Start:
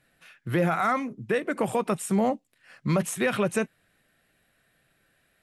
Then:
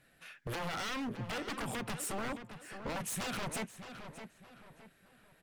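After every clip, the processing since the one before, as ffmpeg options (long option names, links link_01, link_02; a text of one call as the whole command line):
ffmpeg -i in.wav -filter_complex "[0:a]acompressor=threshold=-27dB:ratio=16,aeval=exprs='0.0224*(abs(mod(val(0)/0.0224+3,4)-2)-1)':channel_layout=same,asplit=2[link_01][link_02];[link_02]adelay=617,lowpass=frequency=3500:poles=1,volume=-9.5dB,asplit=2[link_03][link_04];[link_04]adelay=617,lowpass=frequency=3500:poles=1,volume=0.38,asplit=2[link_05][link_06];[link_06]adelay=617,lowpass=frequency=3500:poles=1,volume=0.38,asplit=2[link_07][link_08];[link_08]adelay=617,lowpass=frequency=3500:poles=1,volume=0.38[link_09];[link_01][link_03][link_05][link_07][link_09]amix=inputs=5:normalize=0" out.wav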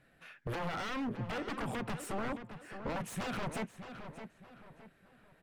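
ffmpeg -i in.wav -af "highshelf=frequency=3300:gain=-12,volume=2dB" out.wav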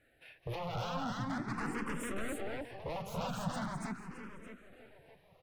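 ffmpeg -i in.wav -filter_complex "[0:a]asplit=2[link_01][link_02];[link_02]aecho=0:1:207|285.7:0.316|0.891[link_03];[link_01][link_03]amix=inputs=2:normalize=0,asplit=2[link_04][link_05];[link_05]afreqshift=0.42[link_06];[link_04][link_06]amix=inputs=2:normalize=1" out.wav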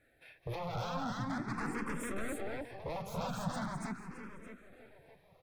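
ffmpeg -i in.wav -af "bandreject=frequency=2900:width=6.8" out.wav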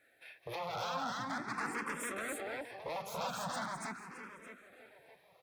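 ffmpeg -i in.wav -af "highpass=frequency=740:poles=1,volume=4dB" out.wav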